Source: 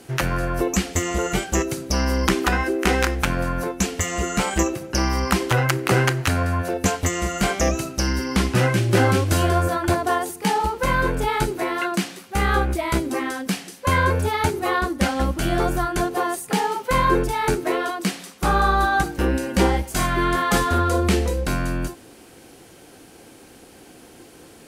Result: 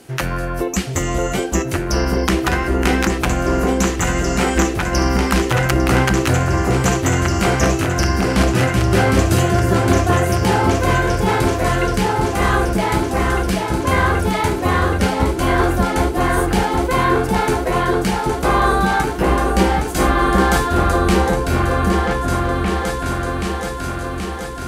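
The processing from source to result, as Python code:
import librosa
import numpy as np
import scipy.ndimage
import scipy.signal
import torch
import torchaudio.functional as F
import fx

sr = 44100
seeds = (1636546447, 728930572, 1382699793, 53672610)

y = fx.echo_opening(x, sr, ms=778, hz=750, octaves=2, feedback_pct=70, wet_db=0)
y = y * 10.0 ** (1.0 / 20.0)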